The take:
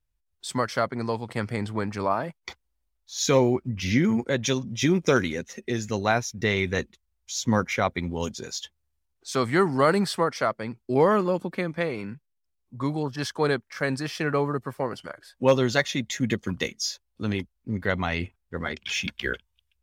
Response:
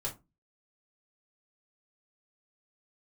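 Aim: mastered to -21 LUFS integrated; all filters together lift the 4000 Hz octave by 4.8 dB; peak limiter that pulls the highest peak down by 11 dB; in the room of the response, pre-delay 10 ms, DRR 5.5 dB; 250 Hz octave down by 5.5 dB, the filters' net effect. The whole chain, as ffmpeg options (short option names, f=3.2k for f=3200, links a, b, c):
-filter_complex "[0:a]equalizer=f=250:t=o:g=-7.5,equalizer=f=4k:t=o:g=6,alimiter=limit=-17dB:level=0:latency=1,asplit=2[a][b];[1:a]atrim=start_sample=2205,adelay=10[c];[b][c]afir=irnorm=-1:irlink=0,volume=-7.5dB[d];[a][d]amix=inputs=2:normalize=0,volume=7.5dB"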